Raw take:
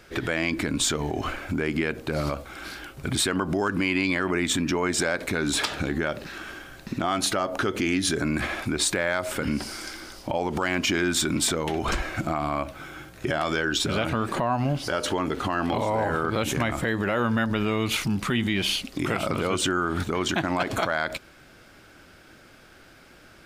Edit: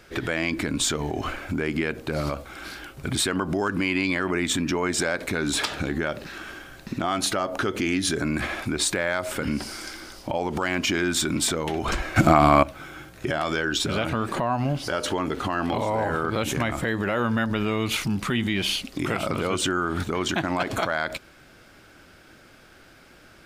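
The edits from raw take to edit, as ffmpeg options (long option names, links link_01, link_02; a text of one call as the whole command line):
ffmpeg -i in.wav -filter_complex "[0:a]asplit=3[link_01][link_02][link_03];[link_01]atrim=end=12.162[link_04];[link_02]atrim=start=12.158:end=12.632,asetpts=PTS-STARTPTS,volume=11dB[link_05];[link_03]atrim=start=12.628[link_06];[link_04][link_05]acrossfade=duration=0.004:curve1=hsin:curve2=hsin[link_07];[link_07][link_06]acrossfade=duration=0.004:curve1=hsin:curve2=hsin" out.wav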